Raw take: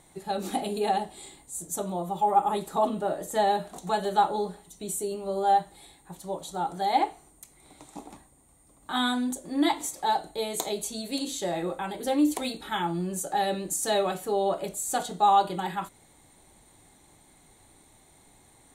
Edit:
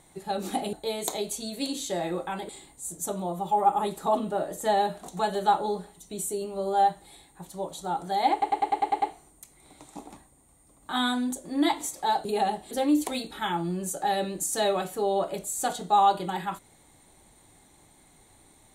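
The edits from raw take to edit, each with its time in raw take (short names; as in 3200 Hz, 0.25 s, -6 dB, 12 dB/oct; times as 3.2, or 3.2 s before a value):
0.73–1.19 swap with 10.25–12.01
7.02 stutter 0.10 s, 8 plays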